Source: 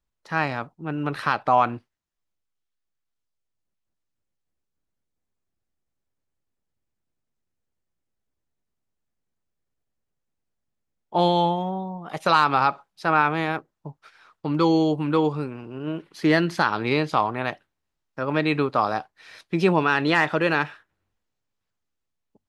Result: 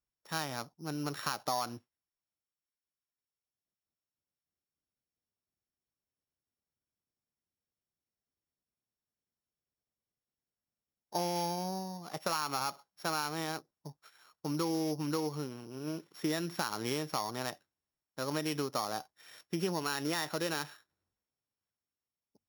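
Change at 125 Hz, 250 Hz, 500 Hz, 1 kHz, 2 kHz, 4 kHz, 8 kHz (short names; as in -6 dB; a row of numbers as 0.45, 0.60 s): -12.5 dB, -12.5 dB, -13.0 dB, -15.0 dB, -16.0 dB, -6.5 dB, n/a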